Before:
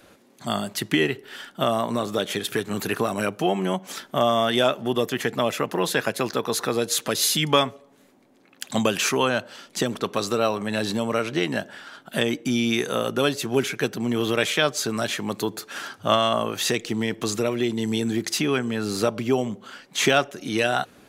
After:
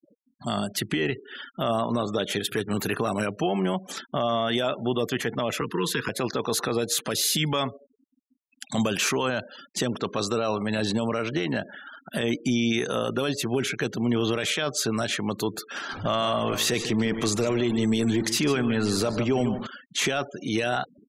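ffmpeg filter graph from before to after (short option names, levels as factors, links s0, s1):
-filter_complex "[0:a]asettb=1/sr,asplit=3[s0][s1][s2];[s0]atrim=end=5.614[s3];[s1]atrim=start=5.61:end=6.09,asetpts=PTS-STARTPTS,afade=t=in:d=0.004:c=qsin,afade=t=out:st=0.476:d=0.004:c=qsin,acrossover=split=250|3000[s4][s5][s6];[s5]acompressor=threshold=0.0631:ratio=2.5:attack=3.2:release=140:knee=2.83:detection=peak[s7];[s4][s7][s6]amix=inputs=3:normalize=0,asuperstop=centerf=660:order=12:qfactor=1.6,adynamicequalizer=threshold=0.00708:dfrequency=5300:dqfactor=0.7:tfrequency=5300:tqfactor=0.7:attack=5:release=100:ratio=0.375:range=1.5:mode=cutabove:tftype=highshelf[s8];[s2]atrim=start=6.086[s9];[s3][s8]acrossfade=d=0.004:c1=hsin:c2=qsin[s10];[s10][s9]acrossfade=d=0.004:c1=qsin:c2=hsin,asettb=1/sr,asplit=3[s11][s12][s13];[s11]atrim=end=15.894[s14];[s12]atrim=start=15.89:end=19.67,asetpts=PTS-STARTPTS,afade=t=in:d=0.004:c=qsin,afade=t=out:st=3.776:d=0.004:c=qsin,aeval=exprs='val(0)+0.5*0.0237*sgn(val(0))':c=same,aecho=1:1:149:0.251,atrim=end_sample=166698[s15];[s13]atrim=start=19.666[s16];[s14][s15]acrossfade=d=0.004:c1=hsin:c2=qsin[s17];[s17][s16]acrossfade=d=0.004:c1=qsin:c2=hsin,afftfilt=real='re*gte(hypot(re,im),0.0126)':imag='im*gte(hypot(re,im),0.0126)':win_size=1024:overlap=0.75,lowshelf=f=72:g=9,alimiter=limit=0.178:level=0:latency=1:release=20"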